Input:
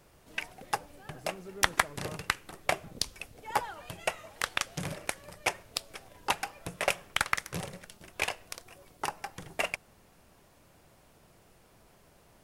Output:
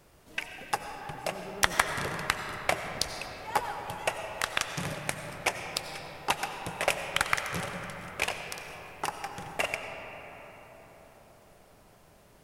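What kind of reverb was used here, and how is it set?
algorithmic reverb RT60 5 s, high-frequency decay 0.4×, pre-delay 50 ms, DRR 5 dB; trim +1 dB

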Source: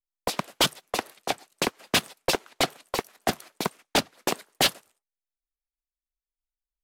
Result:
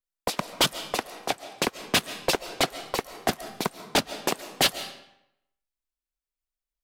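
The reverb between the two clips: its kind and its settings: algorithmic reverb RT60 0.79 s, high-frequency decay 0.85×, pre-delay 100 ms, DRR 12.5 dB

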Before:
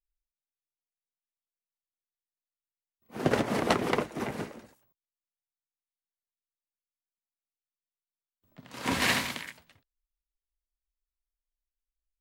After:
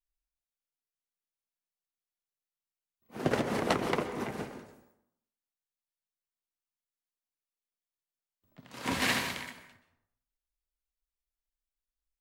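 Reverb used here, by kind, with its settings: plate-style reverb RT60 0.72 s, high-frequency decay 0.55×, pre-delay 115 ms, DRR 9.5 dB; trim -3 dB

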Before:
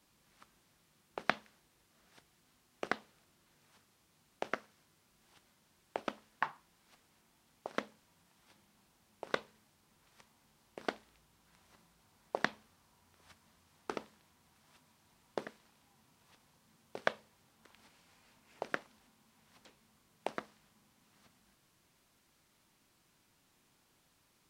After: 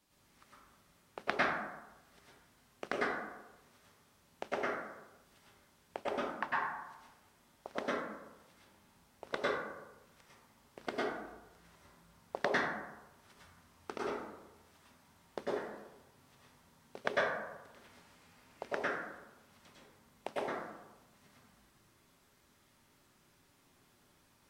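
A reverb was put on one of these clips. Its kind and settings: plate-style reverb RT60 1 s, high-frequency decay 0.4×, pre-delay 90 ms, DRR -7.5 dB; trim -4 dB

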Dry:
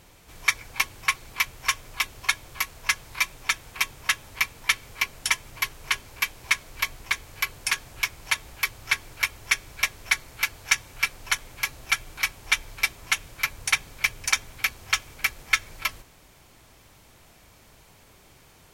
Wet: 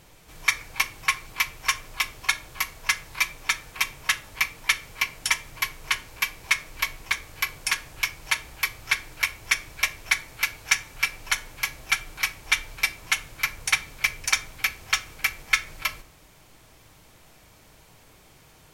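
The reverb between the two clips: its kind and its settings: simulated room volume 590 m³, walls furnished, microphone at 0.56 m

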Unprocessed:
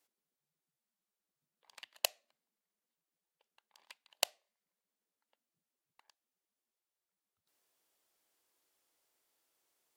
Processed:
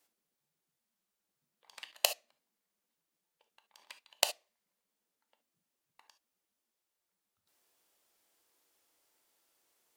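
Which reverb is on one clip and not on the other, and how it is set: gated-style reverb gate 90 ms flat, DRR 8 dB; trim +4 dB

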